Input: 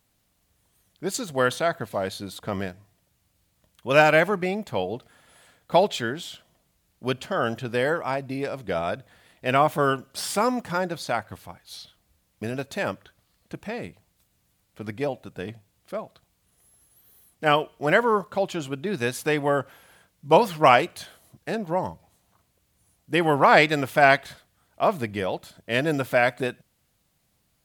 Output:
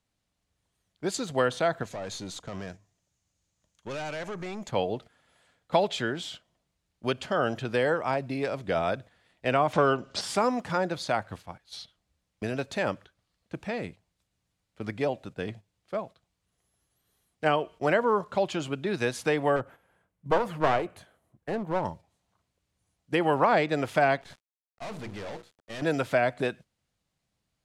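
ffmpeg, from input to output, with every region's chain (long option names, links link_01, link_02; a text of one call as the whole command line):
ffmpeg -i in.wav -filter_complex "[0:a]asettb=1/sr,asplit=3[link_01][link_02][link_03];[link_01]atrim=end=1.834[link_04];[link_02]atrim=start=1.83:end=4.69,asetpts=PTS-STARTPTS,afade=type=in:duration=0.004:curve=qsin,afade=type=out:start_time=2.856:duration=0.004:curve=qsin,equalizer=frequency=6600:width_type=o:width=0.48:gain=12,acompressor=threshold=-28dB:ratio=3:attack=3.2:release=140:knee=1:detection=peak,aeval=exprs='(tanh(39.8*val(0)+0.3)-tanh(0.3))/39.8':channel_layout=same[link_05];[link_03]atrim=start=4.686[link_06];[link_04][link_05]acrossfade=duration=0.004:curve1=hsin:curve2=qsin[link_07];[link_07][link_06]acrossfade=duration=0.004:curve1=qsin:curve2=hsin,asettb=1/sr,asplit=3[link_08][link_09][link_10];[link_08]atrim=end=9.734[link_11];[link_09]atrim=start=9.73:end=10.21,asetpts=PTS-STARTPTS,afade=type=in:duration=0.004:curve=qsin,afade=type=out:start_time=0.476:duration=0.004:curve=qsin,lowpass=frequency=7100:width=0.5412,lowpass=frequency=7100:width=1.3066,acontrast=82[link_12];[link_10]atrim=start=10.206[link_13];[link_11][link_12]acrossfade=duration=0.004:curve1=hsin:curve2=qsin[link_14];[link_14][link_13]acrossfade=duration=0.004:curve1=qsin:curve2=hsin,asettb=1/sr,asplit=3[link_15][link_16][link_17];[link_15]atrim=end=19.564[link_18];[link_16]atrim=start=19.56:end=21.85,asetpts=PTS-STARTPTS,afade=type=in:duration=0.004:curve=qsin,afade=type=out:start_time=2.286:duration=0.004:curve=qsin,equalizer=frequency=4800:width_type=o:width=1.9:gain=-15,aeval=exprs='clip(val(0),-1,0.0376)':channel_layout=same[link_19];[link_17]atrim=start=21.846[link_20];[link_18][link_19]acrossfade=duration=0.004:curve1=hsin:curve2=qsin[link_21];[link_21][link_20]acrossfade=duration=0.004:curve1=qsin:curve2=hsin,asettb=1/sr,asplit=3[link_22][link_23][link_24];[link_22]atrim=end=24.214[link_25];[link_23]atrim=start=24.21:end=25.82,asetpts=PTS-STARTPTS,afade=type=in:duration=0.004:curve=qsin,afade=type=out:start_time=1.606:duration=0.004:curve=qsin,bandreject=frequency=60:width_type=h:width=6,bandreject=frequency=120:width_type=h:width=6,bandreject=frequency=180:width_type=h:width=6,bandreject=frequency=240:width_type=h:width=6,bandreject=frequency=300:width_type=h:width=6,bandreject=frequency=360:width_type=h:width=6,bandreject=frequency=420:width_type=h:width=6,bandreject=frequency=480:width_type=h:width=6,aeval=exprs='(tanh(63.1*val(0)+0.45)-tanh(0.45))/63.1':channel_layout=same,aeval=exprs='val(0)*gte(abs(val(0)),0.00501)':channel_layout=same[link_26];[link_24]atrim=start=25.816[link_27];[link_25][link_26]acrossfade=duration=0.004:curve1=hsin:curve2=qsin[link_28];[link_28][link_27]acrossfade=duration=0.004:curve1=qsin:curve2=hsin,lowpass=7700,agate=range=-9dB:threshold=-43dB:ratio=16:detection=peak,acrossover=split=360|980[link_29][link_30][link_31];[link_29]acompressor=threshold=-31dB:ratio=4[link_32];[link_30]acompressor=threshold=-23dB:ratio=4[link_33];[link_31]acompressor=threshold=-30dB:ratio=4[link_34];[link_32][link_33][link_34]amix=inputs=3:normalize=0" out.wav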